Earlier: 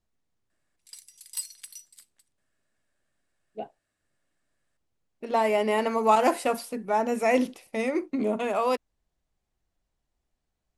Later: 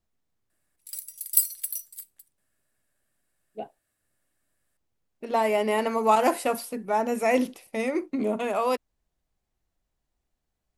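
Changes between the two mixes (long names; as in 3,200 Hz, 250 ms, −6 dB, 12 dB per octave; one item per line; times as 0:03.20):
background: remove band-pass filter 130–7,100 Hz
master: remove low-pass filter 10,000 Hz 12 dB per octave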